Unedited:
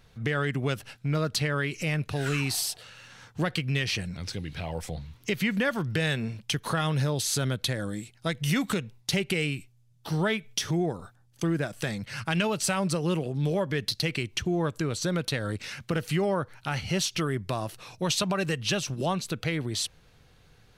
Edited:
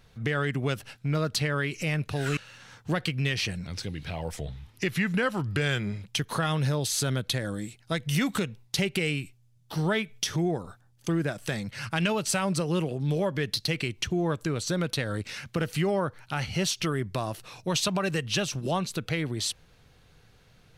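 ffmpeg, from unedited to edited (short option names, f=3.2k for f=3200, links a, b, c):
-filter_complex "[0:a]asplit=4[a][b][c][d];[a]atrim=end=2.372[e];[b]atrim=start=2.868:end=4.874[f];[c]atrim=start=4.87:end=6.42,asetpts=PTS-STARTPTS,asetrate=40131,aresample=44100,atrim=end_sample=75115,asetpts=PTS-STARTPTS[g];[d]atrim=start=6.416[h];[e][f]acrossfade=d=0.004:c1=hsin:c2=hsin[i];[i][g]acrossfade=d=0.004:c1=hsin:c2=hsin[j];[j][h]acrossfade=d=0.004:c1=hsin:c2=hsin"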